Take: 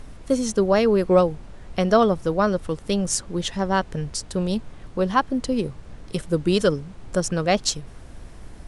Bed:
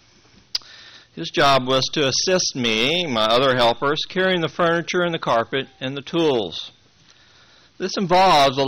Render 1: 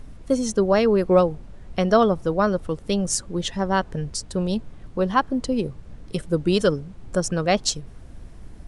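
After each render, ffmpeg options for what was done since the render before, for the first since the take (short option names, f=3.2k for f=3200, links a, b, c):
-af "afftdn=nr=6:nf=-42"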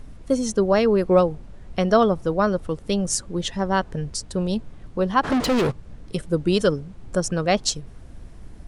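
-filter_complex "[0:a]asplit=3[a][b][c];[a]afade=t=out:st=5.23:d=0.02[d];[b]asplit=2[e][f];[f]highpass=f=720:p=1,volume=35dB,asoftclip=type=tanh:threshold=-13.5dB[g];[e][g]amix=inputs=2:normalize=0,lowpass=f=3.5k:p=1,volume=-6dB,afade=t=in:st=5.23:d=0.02,afade=t=out:st=5.7:d=0.02[h];[c]afade=t=in:st=5.7:d=0.02[i];[d][h][i]amix=inputs=3:normalize=0"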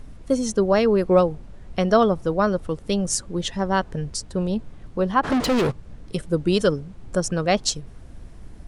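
-filter_complex "[0:a]asettb=1/sr,asplit=3[a][b][c];[a]atrim=end=4.244[d];[b]atrim=start=4.24:end=5.23,asetpts=PTS-STARTPTS,afade=t=in:d=0.004:c=qsin,afade=t=out:st=0.986:d=0.004:c=qsin,acrossover=split=2500[e][f];[f]acompressor=threshold=-42dB:ratio=4:attack=1:release=60[g];[e][g]amix=inputs=2:normalize=0[h];[c]atrim=start=5.226[i];[d][h]acrossfade=d=0.004:c1=hsin:c2=qsin[j];[j][i]acrossfade=d=0.004:c1=qsin:c2=hsin"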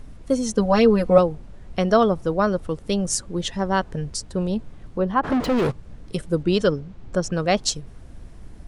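-filter_complex "[0:a]asettb=1/sr,asplit=3[a][b][c];[a]atrim=end=0.574[d];[b]atrim=start=0.57:end=1.18,asetpts=PTS-STARTPTS,afade=t=in:d=0.004:c=qsin,afade=t=out:st=0.606:d=0.004:c=qsin,aecho=1:1:4:0.9,atrim=end_sample=26901[e];[c]atrim=start=1.176[f];[d][e]acrossfade=d=0.004:c1=hsin:c2=qsin[g];[g][f]acrossfade=d=0.004:c1=qsin:c2=hsin,asettb=1/sr,asplit=3[h][i][j];[h]atrim=end=4.984[k];[i]atrim=start=4.98:end=5.62,asetpts=PTS-STARTPTS,afade=t=in:d=0.004:c=qsin,afade=t=out:st=0.636:d=0.004:c=qsin,equalizer=f=8.3k:t=o:w=2.8:g=-9.5[l];[j]atrim=start=5.616[m];[k][l]acrossfade=d=0.004:c1=hsin:c2=qsin[n];[n][m]acrossfade=d=0.004:c1=qsin:c2=hsin,asettb=1/sr,asplit=3[o][p][q];[o]atrim=end=6.434[r];[p]atrim=start=6.43:end=7.33,asetpts=PTS-STARTPTS,afade=t=in:d=0.004:c=qsin,afade=t=out:st=0.896:d=0.004:c=qsin,lowpass=5.8k[s];[q]atrim=start=7.326[t];[r][s]acrossfade=d=0.004:c1=hsin:c2=qsin[u];[u][t]acrossfade=d=0.004:c1=qsin:c2=hsin"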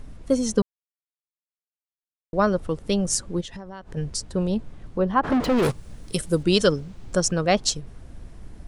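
-filter_complex "[0:a]asplit=3[a][b][c];[a]afade=t=out:st=3.4:d=0.02[d];[b]acompressor=threshold=-33dB:ratio=20:attack=3.2:release=140:knee=1:detection=peak,afade=t=in:st=3.4:d=0.02,afade=t=out:st=3.95:d=0.02[e];[c]afade=t=in:st=3.95:d=0.02[f];[d][e][f]amix=inputs=3:normalize=0,asplit=3[g][h][i];[g]afade=t=out:st=5.62:d=0.02[j];[h]aemphasis=mode=production:type=75kf,afade=t=in:st=5.62:d=0.02,afade=t=out:st=7.31:d=0.02[k];[i]afade=t=in:st=7.31:d=0.02[l];[j][k][l]amix=inputs=3:normalize=0,asplit=3[m][n][o];[m]atrim=end=0.62,asetpts=PTS-STARTPTS,afade=t=out:st=0.616:d=0.004:c=hsin[p];[n]atrim=start=0.62:end=2.33,asetpts=PTS-STARTPTS,volume=0[q];[o]atrim=start=2.33,asetpts=PTS-STARTPTS,afade=t=in:d=0.004:c=hsin[r];[p][q][r]concat=n=3:v=0:a=1"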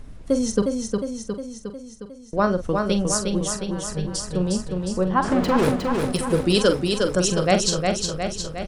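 -filter_complex "[0:a]asplit=2[a][b];[b]adelay=44,volume=-9.5dB[c];[a][c]amix=inputs=2:normalize=0,aecho=1:1:359|718|1077|1436|1795|2154|2513|2872|3231:0.631|0.379|0.227|0.136|0.0818|0.0491|0.0294|0.0177|0.0106"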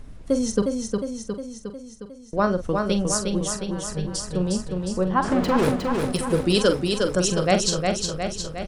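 -af "volume=-1dB"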